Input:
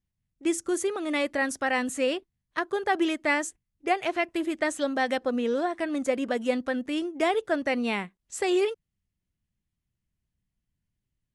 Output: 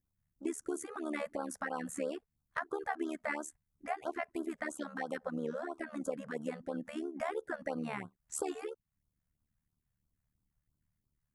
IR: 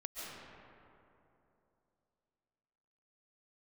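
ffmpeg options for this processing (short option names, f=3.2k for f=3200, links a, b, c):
-af "highshelf=f=2.2k:t=q:w=1.5:g=-11.5,acompressor=threshold=-39dB:ratio=2.5,tremolo=f=74:d=0.824,crystalizer=i=2.5:c=0,afftfilt=real='re*(1-between(b*sr/1024,280*pow(2300/280,0.5+0.5*sin(2*PI*3*pts/sr))/1.41,280*pow(2300/280,0.5+0.5*sin(2*PI*3*pts/sr))*1.41))':imag='im*(1-between(b*sr/1024,280*pow(2300/280,0.5+0.5*sin(2*PI*3*pts/sr))/1.41,280*pow(2300/280,0.5+0.5*sin(2*PI*3*pts/sr))*1.41))':win_size=1024:overlap=0.75,volume=3dB"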